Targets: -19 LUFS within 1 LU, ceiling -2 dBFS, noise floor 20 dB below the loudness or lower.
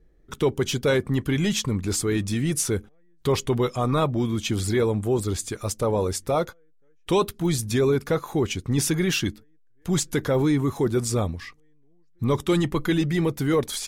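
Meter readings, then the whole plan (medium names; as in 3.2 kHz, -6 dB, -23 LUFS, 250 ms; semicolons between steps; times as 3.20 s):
loudness -24.5 LUFS; peak level -11.5 dBFS; loudness target -19.0 LUFS
-> trim +5.5 dB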